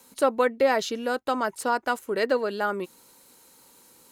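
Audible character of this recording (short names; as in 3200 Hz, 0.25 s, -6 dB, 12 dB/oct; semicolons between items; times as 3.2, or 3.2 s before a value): noise floor -56 dBFS; spectral tilt -3.0 dB/oct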